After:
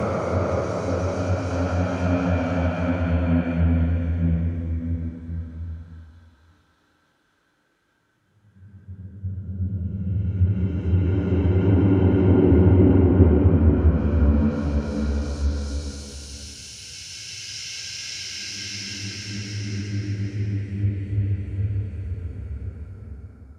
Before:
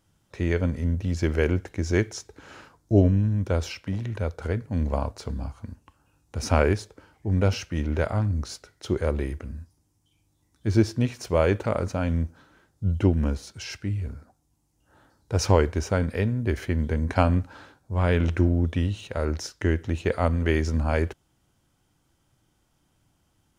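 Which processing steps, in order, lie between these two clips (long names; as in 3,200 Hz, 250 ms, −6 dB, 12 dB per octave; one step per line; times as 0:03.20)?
extreme stretch with random phases 9.6×, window 0.50 s, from 0:11.77
treble cut that deepens with the level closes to 2,800 Hz, closed at −17.5 dBFS
multiband upward and downward expander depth 40%
level +3.5 dB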